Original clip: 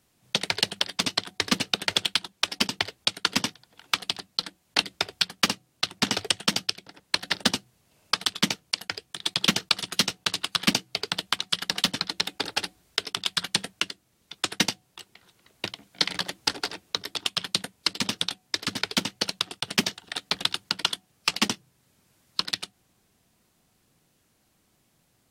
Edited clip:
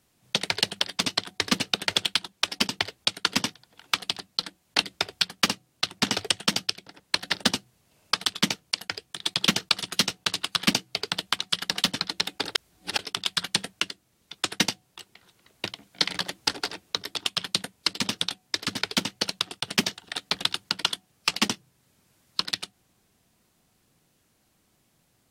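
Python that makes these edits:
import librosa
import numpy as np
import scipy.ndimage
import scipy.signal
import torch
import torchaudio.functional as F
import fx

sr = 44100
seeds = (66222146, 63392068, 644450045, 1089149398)

y = fx.edit(x, sr, fx.reverse_span(start_s=12.55, length_s=0.44), tone=tone)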